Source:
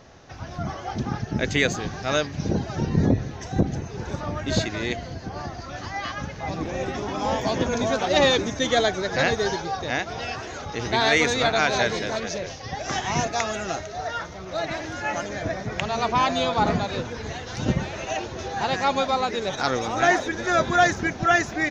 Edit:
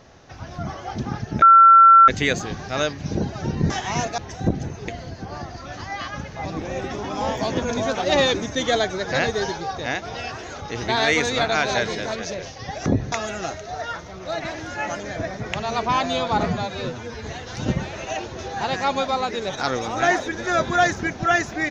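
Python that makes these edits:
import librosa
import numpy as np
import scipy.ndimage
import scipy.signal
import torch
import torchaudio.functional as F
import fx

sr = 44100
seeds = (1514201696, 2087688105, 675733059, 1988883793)

y = fx.edit(x, sr, fx.insert_tone(at_s=1.42, length_s=0.66, hz=1350.0, db=-6.5),
    fx.swap(start_s=3.04, length_s=0.26, other_s=12.9, other_length_s=0.48),
    fx.cut(start_s=4.0, length_s=0.92),
    fx.stretch_span(start_s=16.72, length_s=0.52, factor=1.5), tone=tone)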